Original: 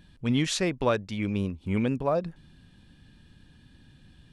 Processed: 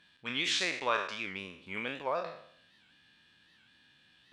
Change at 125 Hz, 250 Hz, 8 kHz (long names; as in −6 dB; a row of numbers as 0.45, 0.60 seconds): −22.5, −17.0, −5.0 decibels